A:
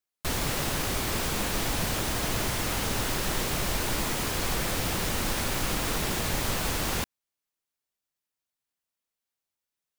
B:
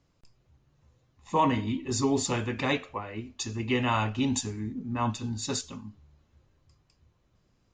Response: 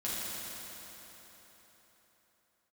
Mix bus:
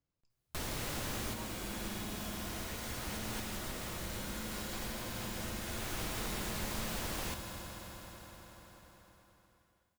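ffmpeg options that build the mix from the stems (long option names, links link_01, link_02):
-filter_complex "[0:a]adelay=300,volume=-3dB,asplit=2[link_01][link_02];[link_02]volume=-8dB[link_03];[1:a]volume=-19.5dB,asplit=2[link_04][link_05];[link_05]apad=whole_len=453788[link_06];[link_01][link_06]sidechaincompress=threshold=-59dB:ratio=8:attack=16:release=304[link_07];[2:a]atrim=start_sample=2205[link_08];[link_03][link_08]afir=irnorm=-1:irlink=0[link_09];[link_07][link_04][link_09]amix=inputs=3:normalize=0,acompressor=threshold=-53dB:ratio=1.5"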